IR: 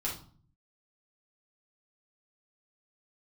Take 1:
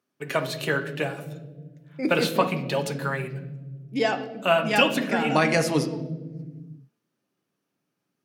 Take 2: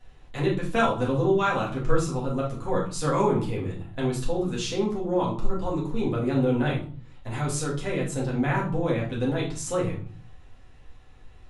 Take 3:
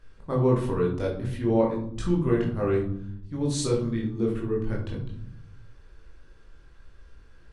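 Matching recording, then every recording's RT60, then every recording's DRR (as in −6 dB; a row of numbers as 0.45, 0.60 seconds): 2; 1.4, 0.45, 0.65 seconds; 6.5, −5.0, −2.5 decibels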